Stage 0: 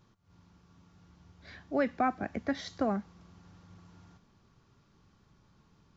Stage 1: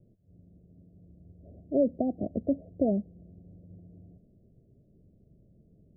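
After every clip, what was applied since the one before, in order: steep low-pass 670 Hz 96 dB/octave; trim +5 dB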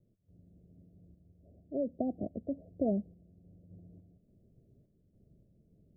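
random-step tremolo; trim -3 dB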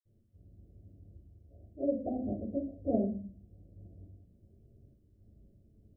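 reverberation RT60 0.45 s, pre-delay 47 ms; trim -2.5 dB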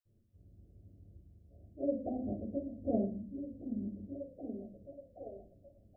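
repeats whose band climbs or falls 774 ms, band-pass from 190 Hz, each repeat 0.7 oct, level -4.5 dB; trim -2.5 dB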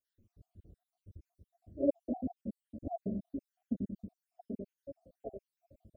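random holes in the spectrogram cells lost 70%; trim +5 dB

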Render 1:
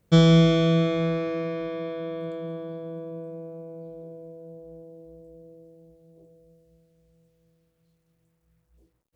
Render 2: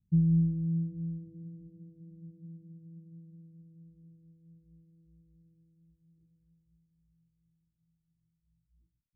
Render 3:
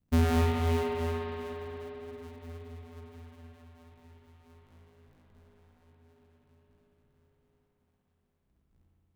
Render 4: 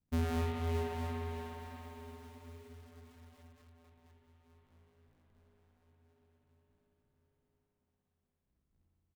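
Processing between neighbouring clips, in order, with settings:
inverse Chebyshev low-pass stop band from 730 Hz, stop band 60 dB; trim -7 dB
cycle switcher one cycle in 2, inverted; spring tank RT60 3.7 s, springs 58 ms, chirp 50 ms, DRR -3 dB
feedback delay 487 ms, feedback 49%, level -19 dB; bit-crushed delay 618 ms, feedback 35%, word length 8-bit, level -8.5 dB; trim -8.5 dB

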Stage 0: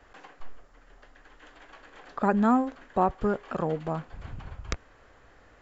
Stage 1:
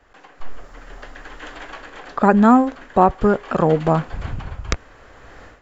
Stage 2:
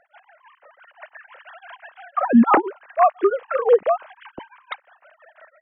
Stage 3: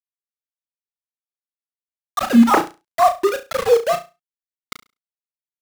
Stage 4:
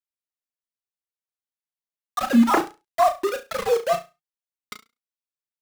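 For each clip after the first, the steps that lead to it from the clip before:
level rider gain up to 16.5 dB
formants replaced by sine waves; tremolo of two beating tones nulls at 5.9 Hz
small samples zeroed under -20.5 dBFS; on a send: flutter echo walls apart 5.9 m, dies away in 0.26 s
flange 0.36 Hz, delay 2.2 ms, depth 4.4 ms, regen +52%

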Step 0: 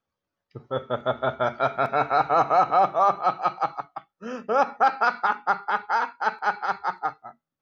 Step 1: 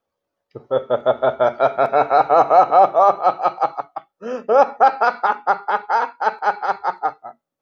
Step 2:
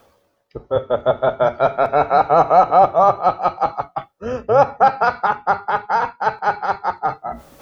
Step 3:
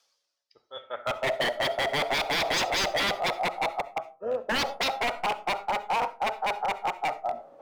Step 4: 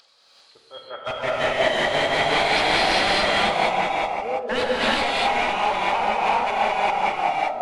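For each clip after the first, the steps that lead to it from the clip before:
FFT filter 170 Hz 0 dB, 550 Hz +12 dB, 1.4 kHz +3 dB; trim -1 dB
octave divider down 2 oct, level -5 dB; reverse; upward compressor, threshold -17 dBFS; reverse
band-pass sweep 5.2 kHz -> 630 Hz, 0.65–1.35 s; wavefolder -21 dBFS; reverberation RT60 0.35 s, pre-delay 25 ms, DRR 16 dB
knee-point frequency compression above 3 kHz 1.5:1; upward compressor, threshold -46 dBFS; gated-style reverb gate 420 ms rising, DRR -6.5 dB

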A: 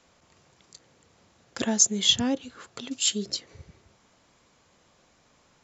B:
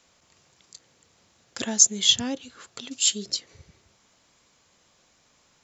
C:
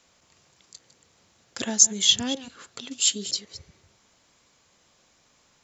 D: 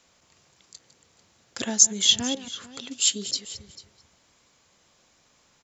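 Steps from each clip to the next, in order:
treble shelf 2.3 kHz +8.5 dB; trim -4 dB
chunks repeated in reverse 138 ms, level -14 dB
delay 444 ms -18 dB

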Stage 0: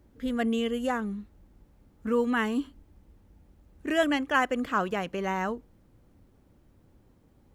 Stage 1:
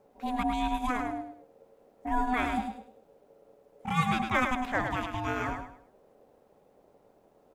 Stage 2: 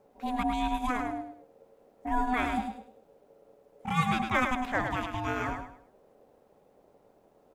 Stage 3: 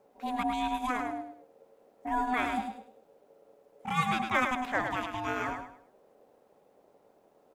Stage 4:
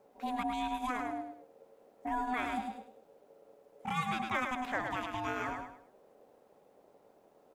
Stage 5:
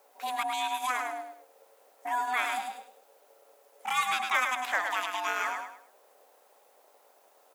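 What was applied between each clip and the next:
ring modulator 500 Hz; on a send: feedback delay 104 ms, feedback 30%, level -6.5 dB
no audible change
bass shelf 140 Hz -12 dB
compression 2:1, threshold -34 dBFS, peak gain reduction 7.5 dB
high-pass 840 Hz 12 dB/octave; treble shelf 5.7 kHz +10 dB; trim +7.5 dB

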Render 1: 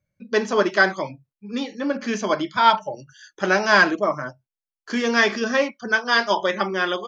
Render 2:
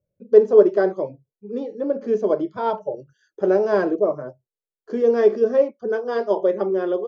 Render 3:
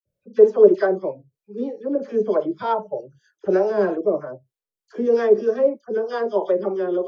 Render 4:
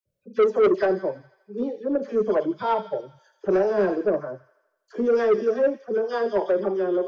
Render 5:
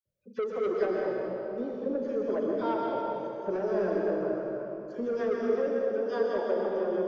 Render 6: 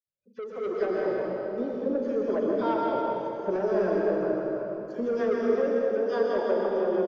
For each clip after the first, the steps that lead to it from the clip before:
FFT filter 280 Hz 0 dB, 430 Hz +14 dB, 880 Hz -5 dB, 2.2 kHz -18 dB; trim -3 dB
harmonic tremolo 3.2 Hz, depth 70%, crossover 520 Hz; phase dispersion lows, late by 57 ms, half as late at 1.7 kHz; trim +3 dB
feedback echo behind a high-pass 82 ms, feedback 60%, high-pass 2.1 kHz, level -8 dB; saturation -13.5 dBFS, distortion -9 dB
compression, threshold -22 dBFS, peak gain reduction 7 dB; reverberation RT60 3.1 s, pre-delay 112 ms, DRR -1.5 dB; trim -7 dB
fade-in on the opening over 1.16 s; feedback delay 160 ms, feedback 59%, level -13 dB; trim +3 dB

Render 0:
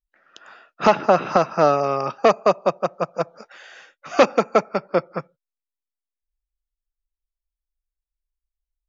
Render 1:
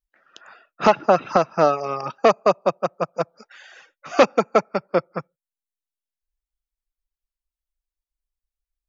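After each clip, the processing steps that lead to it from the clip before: reverb removal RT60 0.78 s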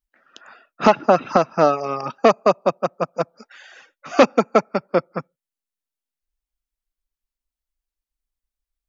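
peaking EQ 250 Hz +6.5 dB 0.42 oct; trim +1 dB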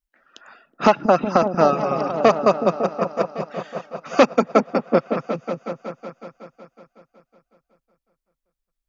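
delay with an opening low-pass 185 ms, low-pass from 200 Hz, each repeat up 1 oct, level -3 dB; trim -1 dB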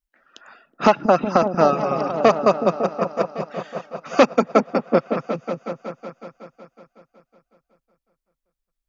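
no audible change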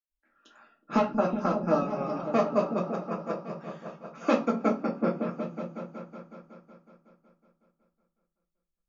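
reverberation RT60 0.35 s, pre-delay 89 ms; trim +4 dB

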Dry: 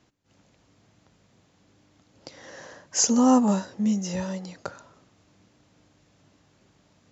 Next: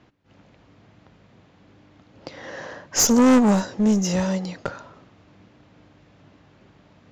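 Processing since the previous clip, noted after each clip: one-sided clip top -29 dBFS; level-controlled noise filter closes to 3 kHz, open at -23 dBFS; saturation -17 dBFS, distortion -17 dB; trim +8.5 dB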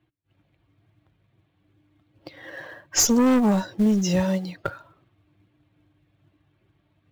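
expander on every frequency bin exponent 1.5; in parallel at -5 dB: short-mantissa float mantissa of 2-bit; on the sum: compression 6:1, threshold -16 dBFS, peak gain reduction 7.5 dB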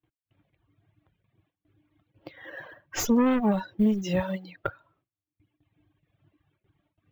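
reverb removal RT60 1.4 s; gate with hold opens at -60 dBFS; high-order bell 7.2 kHz -11.5 dB; trim -1.5 dB

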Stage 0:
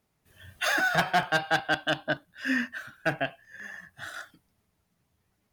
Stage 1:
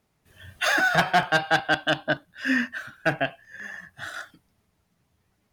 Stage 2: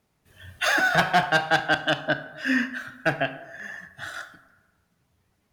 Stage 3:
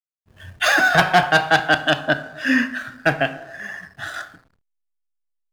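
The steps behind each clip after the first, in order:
treble shelf 11 kHz -6 dB; trim +4 dB
reverberation RT60 1.2 s, pre-delay 17 ms, DRR 11.5 dB
hysteresis with a dead band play -48 dBFS; trim +5.5 dB

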